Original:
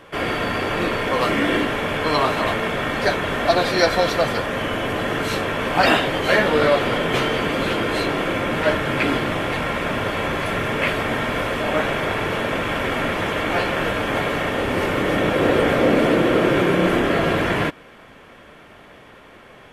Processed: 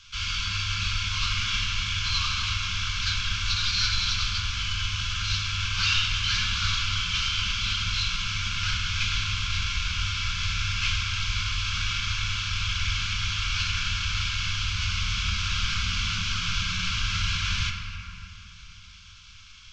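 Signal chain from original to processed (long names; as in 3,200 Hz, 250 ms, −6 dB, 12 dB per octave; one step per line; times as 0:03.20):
variable-slope delta modulation 32 kbit/s
inverse Chebyshev band-stop filter 290–750 Hz, stop band 60 dB
phaser with its sweep stopped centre 500 Hz, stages 6
on a send: convolution reverb RT60 2.7 s, pre-delay 7 ms, DRR 2 dB
on the sum: level +6.5 dB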